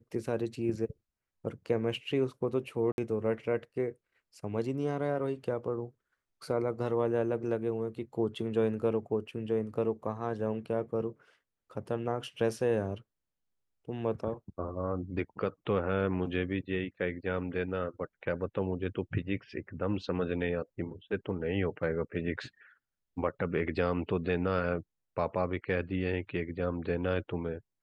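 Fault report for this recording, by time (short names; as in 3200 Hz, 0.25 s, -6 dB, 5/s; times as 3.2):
2.92–2.98 gap 61 ms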